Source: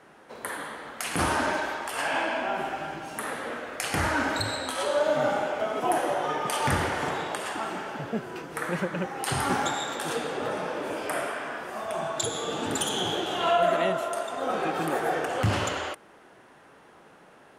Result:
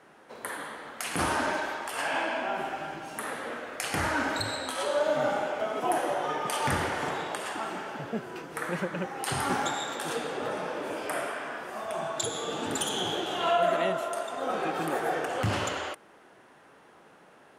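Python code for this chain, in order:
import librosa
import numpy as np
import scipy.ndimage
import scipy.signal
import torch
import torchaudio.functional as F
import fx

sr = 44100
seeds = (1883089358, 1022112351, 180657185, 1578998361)

y = fx.low_shelf(x, sr, hz=87.0, db=-6.0)
y = F.gain(torch.from_numpy(y), -2.0).numpy()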